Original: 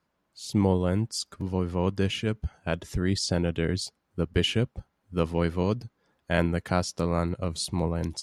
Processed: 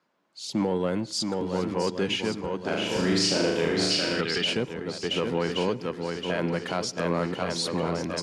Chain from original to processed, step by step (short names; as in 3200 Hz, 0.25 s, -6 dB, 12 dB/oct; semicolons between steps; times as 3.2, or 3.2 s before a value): in parallel at -4 dB: one-sided clip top -26 dBFS; on the sum: three-band isolator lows -23 dB, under 180 Hz, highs -13 dB, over 7400 Hz; swung echo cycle 1.12 s, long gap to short 1.5:1, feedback 43%, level -6.5 dB; 3.91–4.44 spectral gain 1200–5500 Hz +8 dB; limiter -16.5 dBFS, peak gain reduction 10.5 dB; 2.6–4.21 flutter echo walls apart 6.5 m, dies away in 0.82 s; on a send at -20 dB: reverb RT60 0.45 s, pre-delay 89 ms